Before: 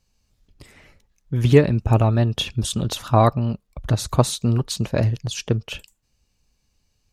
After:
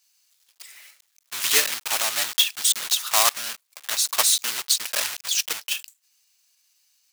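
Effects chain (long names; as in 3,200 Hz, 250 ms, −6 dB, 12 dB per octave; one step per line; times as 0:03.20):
one scale factor per block 3 bits
high-pass filter 1,200 Hz 12 dB per octave
high-shelf EQ 2,700 Hz +11.5 dB
level −1.5 dB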